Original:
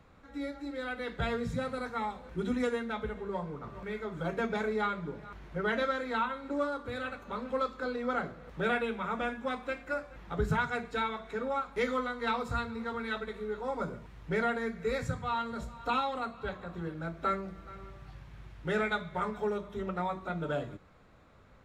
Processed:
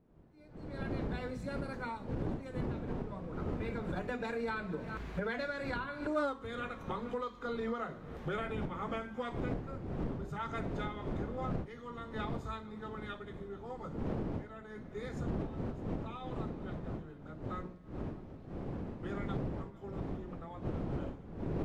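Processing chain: Doppler pass-by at 6.24, 23 m/s, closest 1.3 m; wind noise 300 Hz -64 dBFS; recorder AGC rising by 36 dB/s; gain +2 dB

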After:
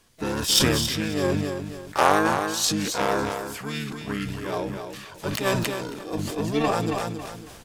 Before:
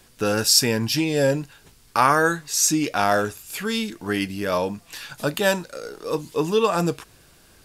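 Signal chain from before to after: added harmonics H 2 -39 dB, 3 -14 dB, 7 -42 dB, 8 -41 dB, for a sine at -2.5 dBFS; harmoniser -7 st 0 dB, +7 st -15 dB; on a send: feedback echo 0.274 s, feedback 20%, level -10 dB; on the sum: sustainer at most 31 dB/s; gain -1 dB

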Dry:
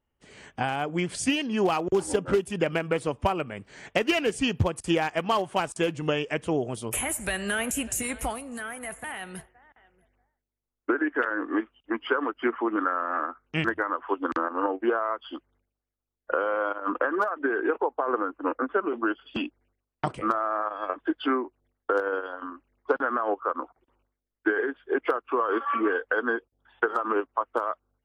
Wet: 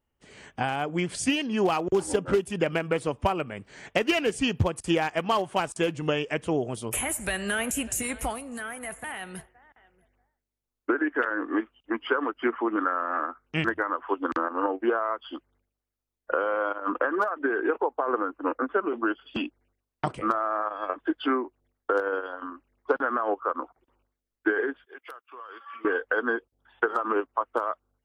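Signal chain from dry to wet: 24.85–25.85 pre-emphasis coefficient 0.97

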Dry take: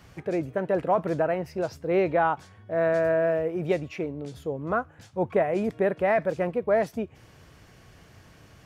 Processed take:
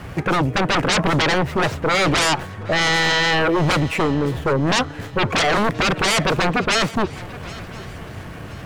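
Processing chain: median filter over 9 samples; sine folder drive 18 dB, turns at -11 dBFS; swung echo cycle 1.025 s, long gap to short 3:1, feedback 31%, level -19 dB; gain -3.5 dB

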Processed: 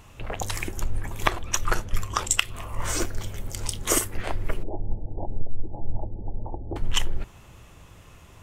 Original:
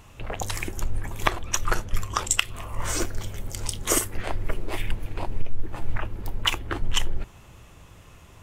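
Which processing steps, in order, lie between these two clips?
4.63–6.76 Chebyshev low-pass 860 Hz, order 6

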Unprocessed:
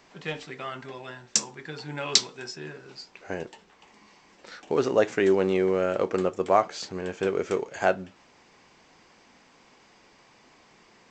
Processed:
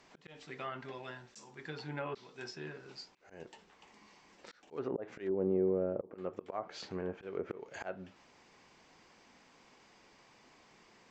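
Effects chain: auto swell 0.296 s; treble ducked by the level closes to 530 Hz, closed at -25.5 dBFS; gain -5.5 dB

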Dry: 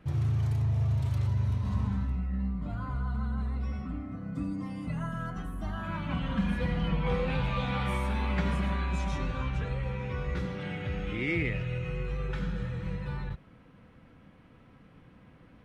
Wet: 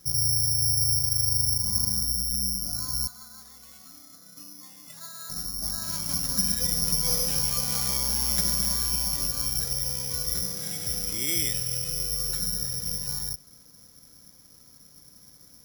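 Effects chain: 3.07–5.3 HPF 1300 Hz 6 dB/oct; careless resampling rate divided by 8×, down filtered, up zero stuff; gain -6 dB

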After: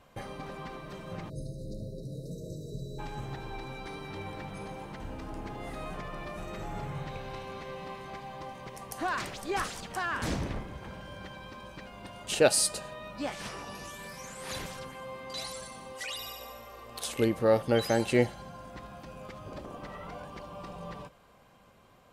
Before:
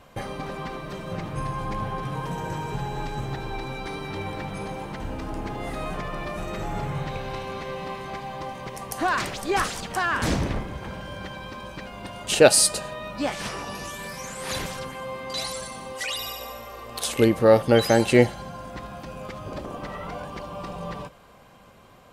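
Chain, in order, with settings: spectral delete 1.29–2.99, 660–3700 Hz; gain -8 dB

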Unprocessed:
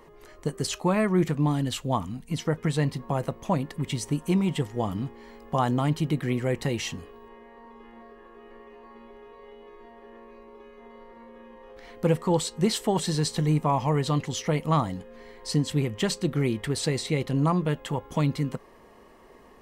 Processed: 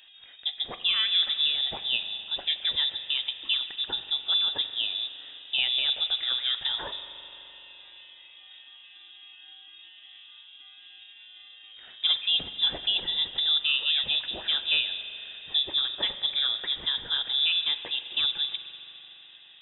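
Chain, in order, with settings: inverted band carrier 3700 Hz; spring tank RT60 3.8 s, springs 42 ms, chirp 75 ms, DRR 9.5 dB; gain -2.5 dB

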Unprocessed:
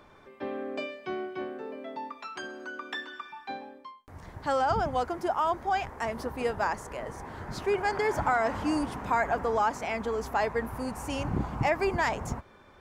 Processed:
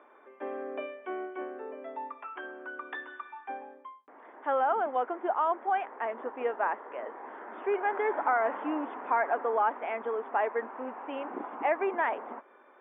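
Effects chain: brick-wall FIR band-pass 210–3600 Hz; three-band isolator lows -22 dB, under 290 Hz, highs -23 dB, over 2300 Hz

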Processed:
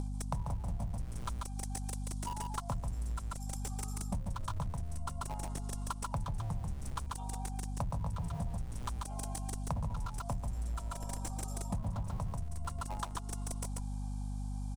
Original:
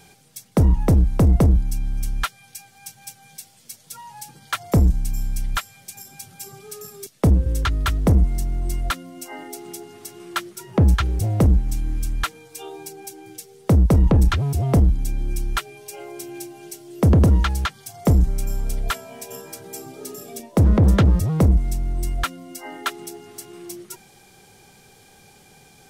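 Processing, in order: granular stretch 0.57×, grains 26 ms; EQ curve 160 Hz 0 dB, 260 Hz -11 dB, 370 Hz -26 dB, 550 Hz -3 dB, 1000 Hz +10 dB, 1900 Hz -18 dB, 3700 Hz -5 dB, 9500 Hz +4 dB, 13000 Hz -13 dB; in parallel at -10.5 dB: Schmitt trigger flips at -29 dBFS; on the sum: echo 0.139 s -3 dB; hum 50 Hz, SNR 11 dB; compressor 6:1, threshold -36 dBFS, peak gain reduction 24.5 dB

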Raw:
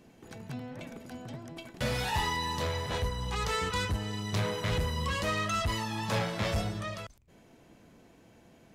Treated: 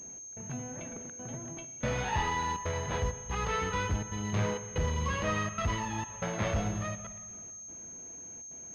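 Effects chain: step gate "xx..xxxxxxxx.xxx" 164 bpm -24 dB; spring tank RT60 1.8 s, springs 38/53 ms, chirp 30 ms, DRR 11 dB; pulse-width modulation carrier 6400 Hz

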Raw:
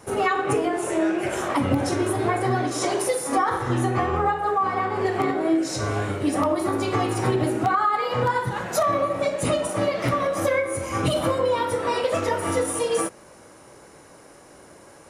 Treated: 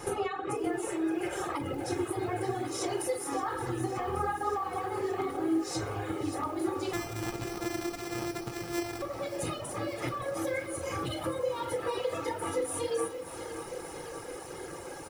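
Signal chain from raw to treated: 6.93–9.02 sample sorter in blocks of 128 samples; compressor 5:1, threshold -38 dBFS, peak gain reduction 19 dB; comb 2.4 ms, depth 51%; shoebox room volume 540 m³, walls mixed, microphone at 0.88 m; reverb removal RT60 0.87 s; lo-fi delay 0.572 s, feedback 80%, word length 9-bit, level -12.5 dB; gain +4 dB

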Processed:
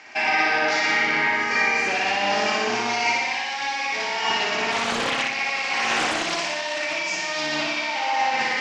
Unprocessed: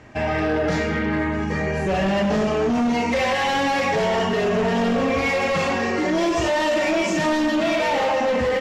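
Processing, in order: octaver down 1 oct, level +3 dB; tilt +4 dB/oct; negative-ratio compressor -24 dBFS, ratio -0.5; speaker cabinet 290–6400 Hz, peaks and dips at 510 Hz -7 dB, 810 Hz +8 dB, 1500 Hz +3 dB, 2300 Hz +9 dB, 4900 Hz +6 dB; flutter echo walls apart 10.3 m, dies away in 1.2 s; 4.71–6.99 Doppler distortion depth 0.52 ms; gain -4.5 dB

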